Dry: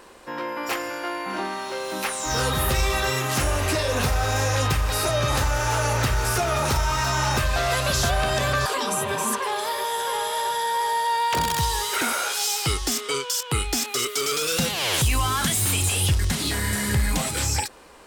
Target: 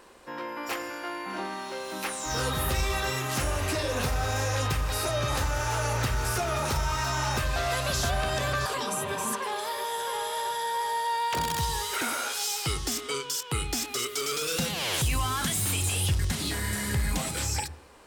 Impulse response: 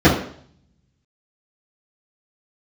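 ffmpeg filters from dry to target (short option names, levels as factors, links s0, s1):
-filter_complex "[0:a]asplit=2[s0][s1];[1:a]atrim=start_sample=2205,adelay=89[s2];[s1][s2]afir=irnorm=-1:irlink=0,volume=0.00596[s3];[s0][s3]amix=inputs=2:normalize=0,volume=0.531"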